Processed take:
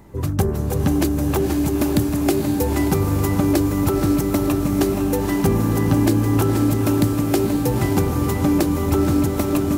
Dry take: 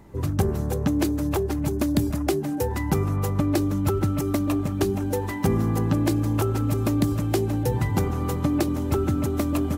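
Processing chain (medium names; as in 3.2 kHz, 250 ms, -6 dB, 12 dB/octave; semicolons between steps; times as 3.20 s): treble shelf 10 kHz +5 dB; on a send: echo that smears into a reverb 519 ms, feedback 59%, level -4.5 dB; on the sum: trim +3 dB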